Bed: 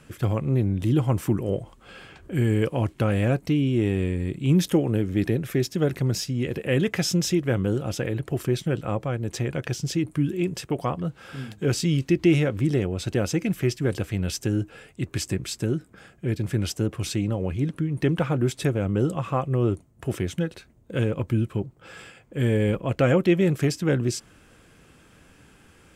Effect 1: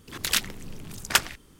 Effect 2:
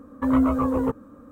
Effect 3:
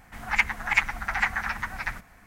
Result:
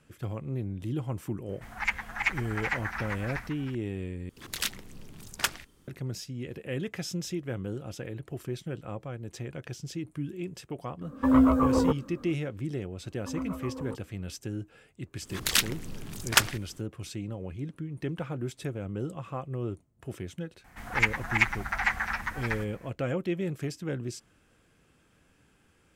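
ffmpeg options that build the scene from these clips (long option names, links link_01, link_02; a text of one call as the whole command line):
ffmpeg -i bed.wav -i cue0.wav -i cue1.wav -i cue2.wav -filter_complex "[3:a]asplit=2[link_01][link_02];[1:a]asplit=2[link_03][link_04];[2:a]asplit=2[link_05][link_06];[0:a]volume=-11dB[link_07];[link_01]aecho=1:1:387:0.335[link_08];[link_07]asplit=2[link_09][link_10];[link_09]atrim=end=4.294[link_11];[link_03]atrim=end=1.59,asetpts=PTS-STARTPTS,volume=-7dB[link_12];[link_10]atrim=start=5.876[link_13];[link_08]atrim=end=2.26,asetpts=PTS-STARTPTS,volume=-6.5dB,afade=type=in:duration=0.004:curve=hsin,afade=type=out:start_time=2.256:duration=0.004:curve=hsin,adelay=1490[link_14];[link_05]atrim=end=1.31,asetpts=PTS-STARTPTS,volume=-0.5dB,afade=type=in:duration=0.004:curve=hsin,afade=type=out:start_time=1.306:duration=0.004:curve=hsin,adelay=11010[link_15];[link_06]atrim=end=1.31,asetpts=PTS-STARTPTS,volume=-16dB,afade=type=in:duration=0.004:curve=hsin,afade=type=out:start_time=1.306:duration=0.004:curve=hsin,adelay=13040[link_16];[link_04]atrim=end=1.59,asetpts=PTS-STARTPTS,afade=type=in:duration=0.004:curve=hsin,afade=type=out:start_time=1.586:duration=0.004:curve=hsin,adelay=15220[link_17];[link_02]atrim=end=2.26,asetpts=PTS-STARTPTS,volume=-2dB,afade=type=in:duration=0.004:curve=hsin,afade=type=out:start_time=2.256:duration=0.004:curve=hsin,adelay=20640[link_18];[link_11][link_12]acrossfade=duration=0.004:curve1=hsin:curve2=hsin[link_19];[link_19][link_13]acrossfade=duration=0.004:curve1=hsin:curve2=hsin[link_20];[link_20][link_14][link_15][link_16][link_17][link_18]amix=inputs=6:normalize=0" out.wav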